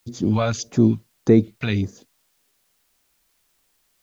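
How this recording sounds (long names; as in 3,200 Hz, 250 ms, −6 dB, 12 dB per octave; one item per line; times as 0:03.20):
phaser sweep stages 2, 1.7 Hz, lowest notch 310–2,900 Hz
a quantiser's noise floor 12 bits, dither triangular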